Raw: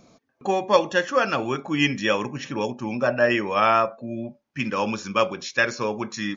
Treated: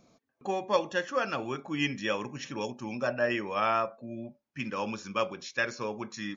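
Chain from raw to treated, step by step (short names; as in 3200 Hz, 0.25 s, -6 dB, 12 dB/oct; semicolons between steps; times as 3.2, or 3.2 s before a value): 2.29–3.13 high shelf 3600 Hz +7.5 dB; gain -8.5 dB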